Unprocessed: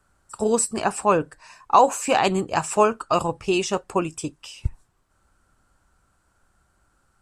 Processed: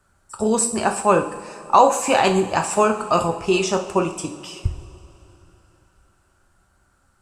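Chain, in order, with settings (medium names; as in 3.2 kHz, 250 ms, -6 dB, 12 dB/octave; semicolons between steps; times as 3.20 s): two-slope reverb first 0.49 s, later 3.5 s, from -18 dB, DRR 4 dB; trim +1.5 dB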